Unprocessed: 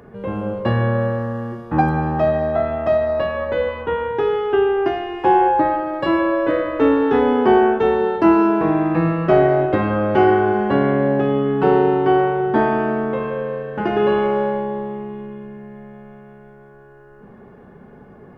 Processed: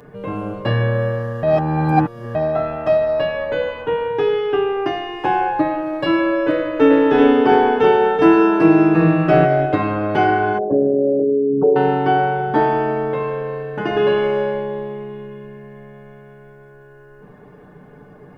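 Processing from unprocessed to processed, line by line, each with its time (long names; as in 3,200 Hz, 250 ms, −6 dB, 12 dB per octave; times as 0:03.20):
0:01.43–0:02.35: reverse
0:06.52–0:09.45: single-tap delay 383 ms −3.5 dB
0:10.58–0:11.76: spectral envelope exaggerated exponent 3
whole clip: high-shelf EQ 3,500 Hz +6 dB; comb filter 6.7 ms, depth 61%; level −1 dB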